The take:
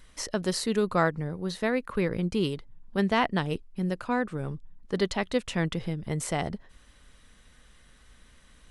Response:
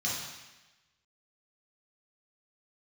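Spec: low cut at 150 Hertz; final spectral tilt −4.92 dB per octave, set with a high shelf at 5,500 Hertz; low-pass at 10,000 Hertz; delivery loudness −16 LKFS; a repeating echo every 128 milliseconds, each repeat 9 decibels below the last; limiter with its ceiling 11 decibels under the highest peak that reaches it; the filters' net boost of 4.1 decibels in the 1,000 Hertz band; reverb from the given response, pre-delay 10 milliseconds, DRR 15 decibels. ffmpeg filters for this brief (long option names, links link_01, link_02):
-filter_complex "[0:a]highpass=150,lowpass=10000,equalizer=frequency=1000:width_type=o:gain=5.5,highshelf=frequency=5500:gain=-6,alimiter=limit=-18dB:level=0:latency=1,aecho=1:1:128|256|384|512:0.355|0.124|0.0435|0.0152,asplit=2[link_01][link_02];[1:a]atrim=start_sample=2205,adelay=10[link_03];[link_02][link_03]afir=irnorm=-1:irlink=0,volume=-21.5dB[link_04];[link_01][link_04]amix=inputs=2:normalize=0,volume=14.5dB"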